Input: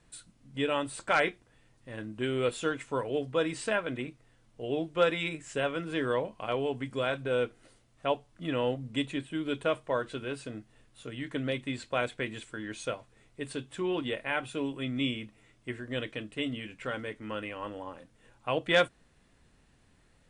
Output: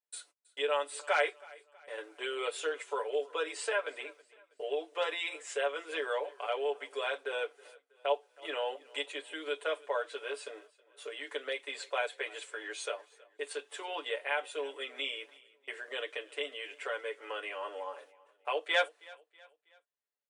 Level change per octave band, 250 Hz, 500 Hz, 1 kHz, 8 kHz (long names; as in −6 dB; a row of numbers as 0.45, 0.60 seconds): −18.5, −3.5, −2.0, +0.5 decibels